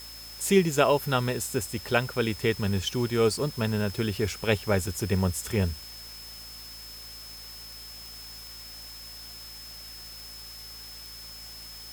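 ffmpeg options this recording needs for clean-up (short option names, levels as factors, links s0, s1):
-af "adeclick=t=4,bandreject=f=55.5:t=h:w=4,bandreject=f=111:t=h:w=4,bandreject=f=166.5:t=h:w=4,bandreject=f=222:t=h:w=4,bandreject=f=277.5:t=h:w=4,bandreject=f=5200:w=30,afwtdn=0.0045"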